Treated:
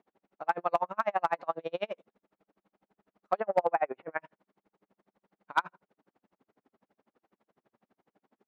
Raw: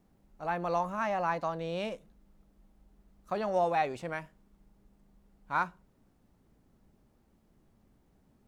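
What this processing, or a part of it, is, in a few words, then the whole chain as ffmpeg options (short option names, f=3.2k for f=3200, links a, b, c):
helicopter radio: -filter_complex "[0:a]asettb=1/sr,asplit=3[a][b][c];[a]atrim=end=3.404[d];[b]atrim=start=3.4:end=4.21,asetpts=PTS-STARTPTS,afade=t=in:d=0.004:c=qsin,afade=t=out:st=0.806:d=0.004:c=qsin,lowpass=f=2.2k:w=0.5412,lowpass=f=2.2k:w=1.3066[e];[c]atrim=start=4.206[f];[d][e]acrossfade=d=0.004:c1=hsin:c2=qsin[g];[g][f]acrossfade=d=0.004:c1=qsin:c2=hsin,highpass=390,lowpass=2.6k,aeval=exprs='val(0)*pow(10,-40*(0.5-0.5*cos(2*PI*12*n/s))/20)':c=same,asoftclip=type=hard:threshold=-24dB,volume=9dB"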